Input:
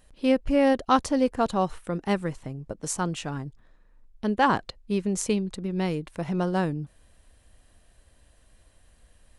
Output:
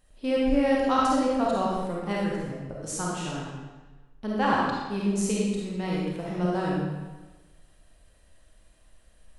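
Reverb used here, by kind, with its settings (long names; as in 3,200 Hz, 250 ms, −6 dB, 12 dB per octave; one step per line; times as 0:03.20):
comb and all-pass reverb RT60 1.2 s, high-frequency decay 0.9×, pre-delay 10 ms, DRR −5 dB
level −6.5 dB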